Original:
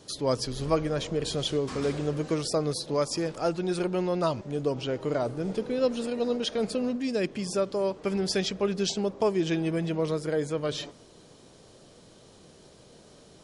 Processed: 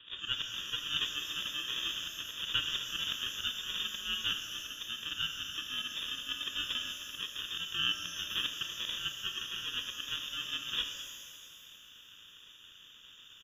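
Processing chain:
high-pass filter 690 Hz 24 dB per octave
decimation without filtering 31×
voice inversion scrambler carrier 3,600 Hz
far-end echo of a speakerphone 340 ms, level −23 dB
volume swells 118 ms
reverb with rising layers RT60 2.1 s, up +12 semitones, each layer −8 dB, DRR 5 dB
level +2.5 dB

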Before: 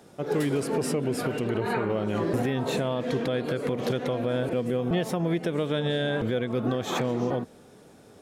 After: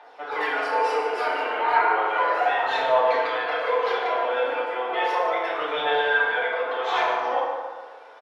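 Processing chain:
high-pass filter 730 Hz 24 dB per octave
in parallel at −8 dB: hard clipping −30 dBFS, distortion −14 dB
on the sum: phase shifter 0.34 Hz, delay 3.8 ms, feedback 55%
high-frequency loss of the air 320 metres
on a send: single-tap delay 147 ms −11.5 dB
on the sum: feedback delay network reverb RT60 1.5 s, low-frequency decay 1.05×, high-frequency decay 0.5×, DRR −10 dB

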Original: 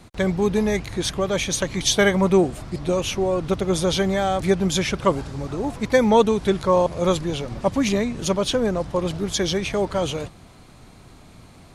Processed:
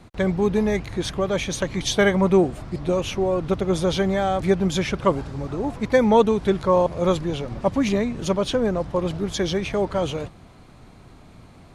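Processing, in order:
high-shelf EQ 3,800 Hz −8.5 dB

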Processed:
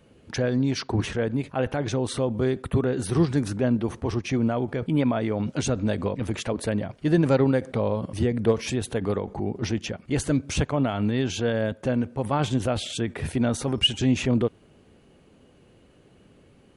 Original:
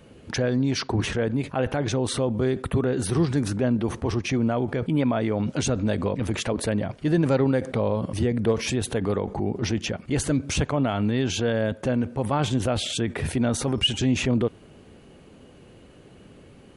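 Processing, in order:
expander for the loud parts 1.5 to 1, over −34 dBFS
level +2 dB

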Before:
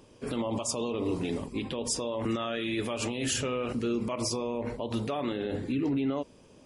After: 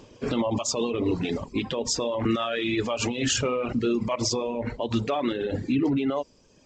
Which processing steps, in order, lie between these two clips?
reverb reduction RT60 1.3 s
level +7 dB
G.722 64 kbit/s 16,000 Hz

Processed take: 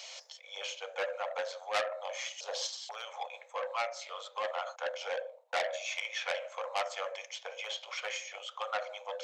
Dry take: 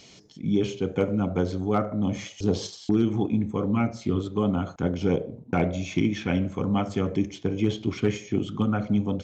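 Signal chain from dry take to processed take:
Chebyshev high-pass filter 510 Hz, order 8
reversed playback
upward compression, threshold −41 dBFS
reversed playback
saturating transformer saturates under 3,400 Hz
level +1 dB

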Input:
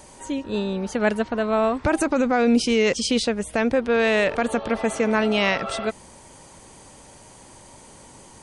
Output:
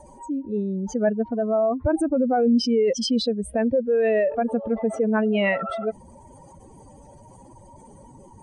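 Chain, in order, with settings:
expanding power law on the bin magnitudes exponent 2.5

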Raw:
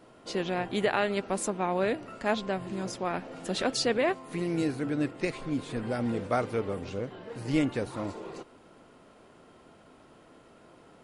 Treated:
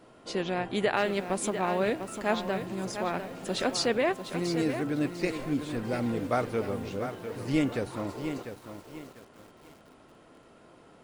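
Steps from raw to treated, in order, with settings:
feedback echo at a low word length 698 ms, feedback 35%, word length 8 bits, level −8.5 dB

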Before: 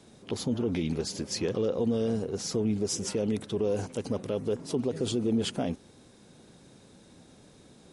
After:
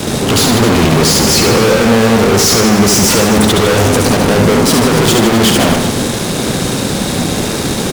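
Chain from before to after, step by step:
fuzz pedal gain 54 dB, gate −59 dBFS
reverse bouncing-ball delay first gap 70 ms, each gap 1.2×, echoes 5
level +2.5 dB

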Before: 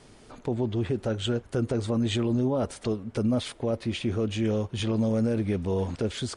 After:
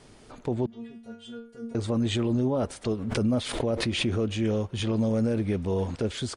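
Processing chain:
0:00.66–0:01.75: stiff-string resonator 230 Hz, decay 0.44 s, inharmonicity 0.002
far-end echo of a speakerphone 130 ms, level −28 dB
0:02.93–0:04.37: background raised ahead of every attack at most 49 dB per second

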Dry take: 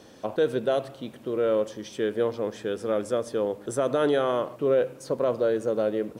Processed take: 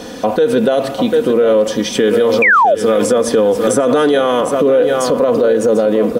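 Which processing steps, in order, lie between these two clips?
comb filter 4.1 ms, depth 55%
single-tap delay 744 ms −11.5 dB
0:02.42–0:02.75: sound drawn into the spectrogram fall 520–2,500 Hz −11 dBFS
downward compressor, threshold −21 dBFS, peak gain reduction 10.5 dB
boost into a limiter +24 dB
0:01.95–0:04.41: multiband upward and downward compressor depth 70%
level −4 dB

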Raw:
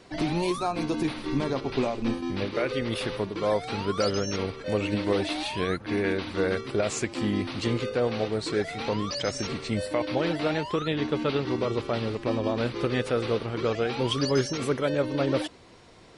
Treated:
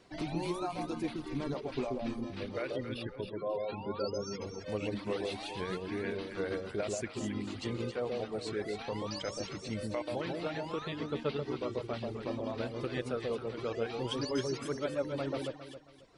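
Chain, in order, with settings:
reverb reduction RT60 1.4 s
0:02.76–0:04.42: gate on every frequency bin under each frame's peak −15 dB strong
delay that swaps between a low-pass and a high-pass 135 ms, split 880 Hz, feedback 54%, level −2 dB
level −9 dB

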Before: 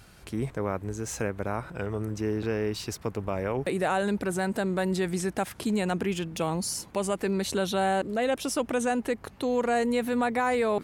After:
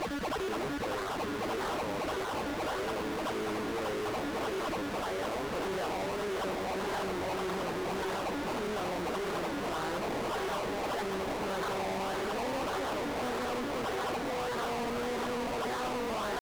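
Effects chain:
spectral magnitudes quantised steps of 30 dB
on a send: feedback delay with all-pass diffusion 474 ms, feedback 64%, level −10.5 dB
on the sum: dynamic equaliser 3,000 Hz, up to −3 dB, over −50 dBFS, Q 1.4
tempo change 0.66×
spectral tilt +1.5 dB per octave
steady tone 7,400 Hz −33 dBFS
sample-and-hold swept by an LFO 24×, swing 60% 1.7 Hz
mid-hump overdrive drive 33 dB, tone 4,800 Hz, clips at −15 dBFS
brickwall limiter −24 dBFS, peak gain reduction 8.5 dB
harmonic generator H 8 −17 dB, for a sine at −24 dBFS
mains-hum notches 50/100/150/200 Hz
highs frequency-modulated by the lows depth 0.53 ms
level −6.5 dB

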